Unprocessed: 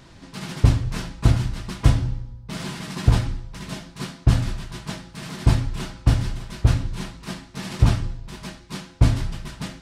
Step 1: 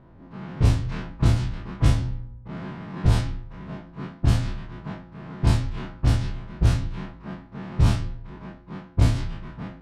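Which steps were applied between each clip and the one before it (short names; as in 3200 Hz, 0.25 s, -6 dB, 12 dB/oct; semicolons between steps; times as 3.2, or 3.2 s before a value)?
spectral dilation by 60 ms; low-pass opened by the level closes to 1000 Hz, open at -7.5 dBFS; gain -6 dB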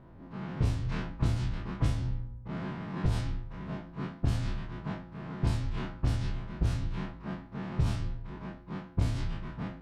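compressor 6:1, threshold -22 dBFS, peak gain reduction 10 dB; gain -2 dB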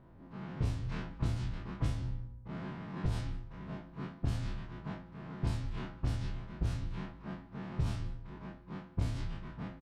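echo 0.183 s -23.5 dB; gain -5 dB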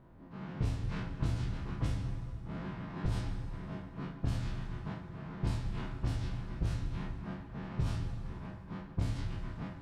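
plate-style reverb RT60 3.6 s, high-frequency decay 0.6×, DRR 6.5 dB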